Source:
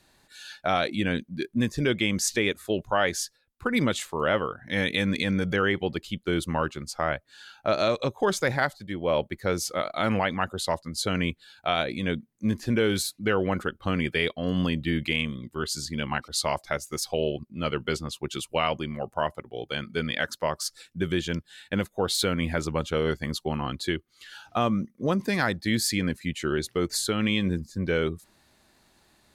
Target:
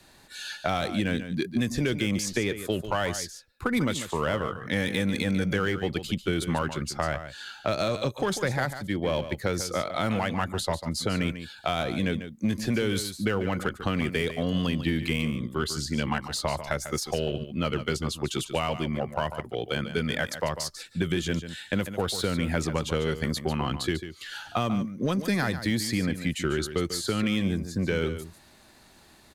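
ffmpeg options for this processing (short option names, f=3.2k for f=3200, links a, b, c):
-filter_complex "[0:a]asplit=2[a][b];[b]asoftclip=type=hard:threshold=-24.5dB,volume=-8dB[c];[a][c]amix=inputs=2:normalize=0,acrossover=split=170|1700|5700[d][e][f][g];[d]acompressor=threshold=-35dB:ratio=4[h];[e]acompressor=threshold=-31dB:ratio=4[i];[f]acompressor=threshold=-40dB:ratio=4[j];[g]acompressor=threshold=-42dB:ratio=4[k];[h][i][j][k]amix=inputs=4:normalize=0,aecho=1:1:145:0.282,volume=3.5dB"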